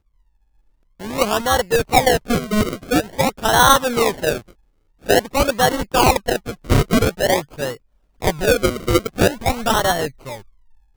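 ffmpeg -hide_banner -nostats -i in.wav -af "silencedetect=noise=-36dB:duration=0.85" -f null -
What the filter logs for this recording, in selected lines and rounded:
silence_start: 0.00
silence_end: 1.00 | silence_duration: 1.00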